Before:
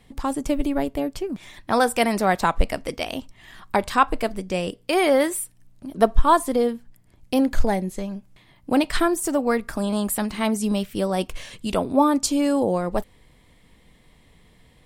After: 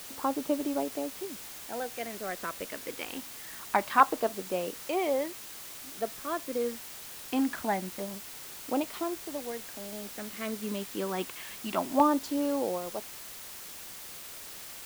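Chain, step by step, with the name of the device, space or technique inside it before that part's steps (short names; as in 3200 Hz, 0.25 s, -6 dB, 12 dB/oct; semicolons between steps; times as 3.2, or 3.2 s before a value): shortwave radio (BPF 310–2500 Hz; tremolo 0.26 Hz, depth 76%; LFO notch saw down 0.25 Hz 430–2500 Hz; white noise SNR 11 dB); gain -2 dB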